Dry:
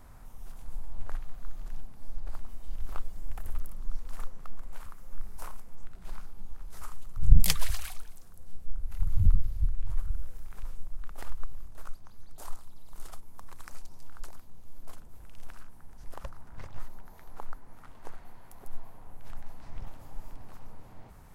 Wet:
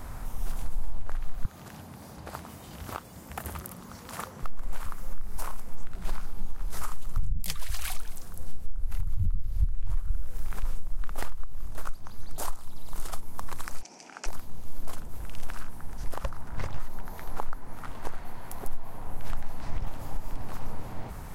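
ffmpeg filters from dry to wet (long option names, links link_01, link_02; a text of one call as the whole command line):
ffmpeg -i in.wav -filter_complex "[0:a]asettb=1/sr,asplit=3[link_01][link_02][link_03];[link_01]atrim=end=1.454[link_04];[link_02]atrim=start=1.45:end=4.43,asetpts=PTS-STARTPTS,afade=type=in:duration=0.004:curve=qsin,afade=type=out:start_time=2.976:duration=0.004:curve=qsin,highpass=frequency=87:width=0.5412,highpass=frequency=87:width=1.3066[link_05];[link_03]atrim=start=4.426[link_06];[link_04][link_05]acrossfade=duration=0.004:curve1=hsin:curve2=qsin[link_07];[link_07][link_06]acrossfade=duration=0.004:curve1=qsin:curve2=hsin,asplit=3[link_08][link_09][link_10];[link_08]afade=type=out:start_time=13.81:duration=0.02[link_11];[link_09]highpass=frequency=230:width=0.5412,highpass=frequency=230:width=1.3066,equalizer=frequency=760:width_type=q:width=4:gain=4,equalizer=frequency=1100:width_type=q:width=4:gain=-8,equalizer=frequency=2400:width_type=q:width=4:gain=10,equalizer=frequency=3800:width_type=q:width=4:gain=-8,equalizer=frequency=5800:width_type=q:width=4:gain=7,lowpass=frequency=7700:width=0.5412,lowpass=frequency=7700:width=1.3066,afade=type=in:start_time=13.81:duration=0.02,afade=type=out:start_time=14.26:duration=0.02[link_12];[link_10]afade=type=in:start_time=14.26:duration=0.02[link_13];[link_11][link_12][link_13]amix=inputs=3:normalize=0,acompressor=threshold=-28dB:ratio=6,alimiter=level_in=4.5dB:limit=-24dB:level=0:latency=1:release=453,volume=-4.5dB,volume=12.5dB" out.wav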